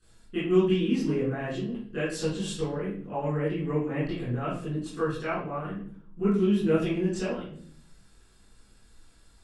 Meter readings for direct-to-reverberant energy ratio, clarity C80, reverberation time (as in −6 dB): −14.0 dB, 6.5 dB, 0.60 s